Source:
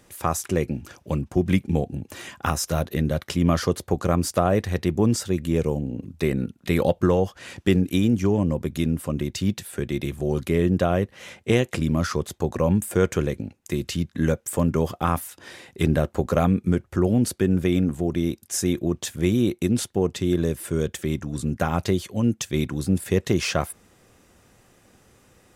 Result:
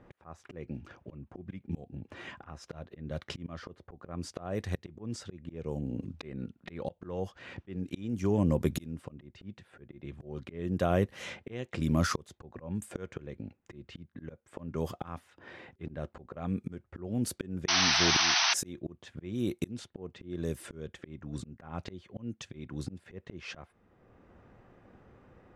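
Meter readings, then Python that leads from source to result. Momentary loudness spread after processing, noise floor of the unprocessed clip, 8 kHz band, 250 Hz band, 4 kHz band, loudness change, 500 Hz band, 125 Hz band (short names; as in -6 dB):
20 LU, -59 dBFS, -5.5 dB, -13.5 dB, +1.5 dB, -9.5 dB, -14.0 dB, -13.0 dB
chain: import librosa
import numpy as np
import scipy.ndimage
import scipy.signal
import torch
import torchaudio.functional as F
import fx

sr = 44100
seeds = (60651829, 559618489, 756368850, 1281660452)

y = fx.auto_swell(x, sr, attack_ms=791.0)
y = fx.env_lowpass(y, sr, base_hz=1300.0, full_db=-29.0)
y = fx.spec_paint(y, sr, seeds[0], shape='noise', start_s=17.68, length_s=0.86, low_hz=640.0, high_hz=6200.0, level_db=-26.0)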